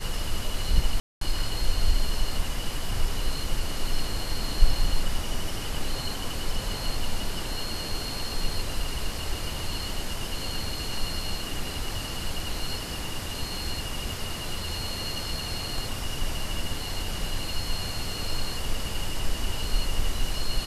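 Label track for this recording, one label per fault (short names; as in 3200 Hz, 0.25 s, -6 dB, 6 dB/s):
1.000000	1.210000	gap 0.213 s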